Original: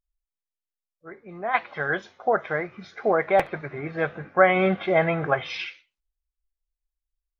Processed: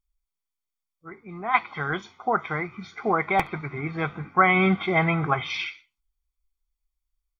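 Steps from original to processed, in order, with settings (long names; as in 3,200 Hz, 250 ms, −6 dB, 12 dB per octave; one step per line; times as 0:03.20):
comb filter 0.9 ms, depth 77%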